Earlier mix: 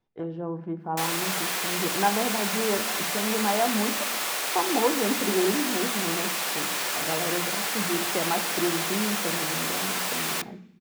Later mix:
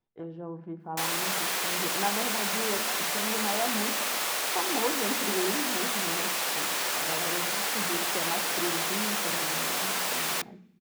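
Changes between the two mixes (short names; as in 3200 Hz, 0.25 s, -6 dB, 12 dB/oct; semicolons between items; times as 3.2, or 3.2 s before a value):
speech -6.5 dB; background: send -8.0 dB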